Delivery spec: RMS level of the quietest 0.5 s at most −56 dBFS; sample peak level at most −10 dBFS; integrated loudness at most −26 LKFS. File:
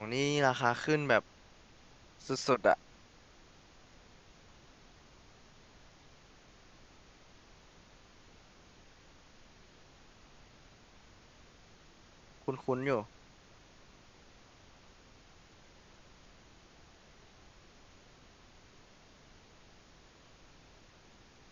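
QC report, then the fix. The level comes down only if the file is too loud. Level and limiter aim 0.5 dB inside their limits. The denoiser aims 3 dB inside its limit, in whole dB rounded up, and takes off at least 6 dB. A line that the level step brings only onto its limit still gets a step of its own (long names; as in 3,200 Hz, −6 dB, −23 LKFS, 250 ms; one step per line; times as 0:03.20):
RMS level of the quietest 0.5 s −59 dBFS: in spec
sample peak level −11.0 dBFS: in spec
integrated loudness −32.0 LKFS: in spec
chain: no processing needed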